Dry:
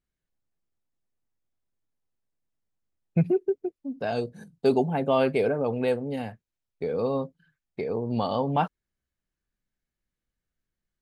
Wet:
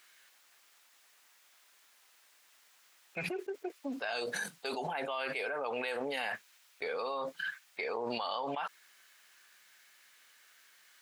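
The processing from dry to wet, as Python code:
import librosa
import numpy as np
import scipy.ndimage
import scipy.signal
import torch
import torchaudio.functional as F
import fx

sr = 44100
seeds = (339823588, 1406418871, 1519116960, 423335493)

y = scipy.signal.sosfilt(scipy.signal.butter(2, 1400.0, 'highpass', fs=sr, output='sos'), x)
y = fx.high_shelf(y, sr, hz=4200.0, db=-6.0)
y = fx.env_flatten(y, sr, amount_pct=100)
y = y * 10.0 ** (-6.0 / 20.0)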